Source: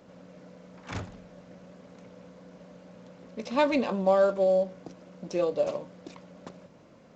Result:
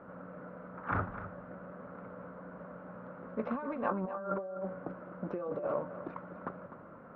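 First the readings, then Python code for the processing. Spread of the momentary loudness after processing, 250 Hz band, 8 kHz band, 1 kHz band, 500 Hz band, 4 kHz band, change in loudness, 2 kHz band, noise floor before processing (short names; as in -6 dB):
13 LU, -6.0 dB, n/a, -5.0 dB, -11.5 dB, under -25 dB, -12.5 dB, -4.5 dB, -55 dBFS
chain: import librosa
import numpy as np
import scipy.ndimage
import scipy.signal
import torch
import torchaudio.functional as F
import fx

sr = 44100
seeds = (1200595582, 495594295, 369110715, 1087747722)

y = fx.over_compress(x, sr, threshold_db=-33.0, ratio=-1.0)
y = fx.ladder_lowpass(y, sr, hz=1500.0, resonance_pct=65)
y = y + 10.0 ** (-12.5 / 20.0) * np.pad(y, (int(252 * sr / 1000.0), 0))[:len(y)]
y = y * librosa.db_to_amplitude(6.5)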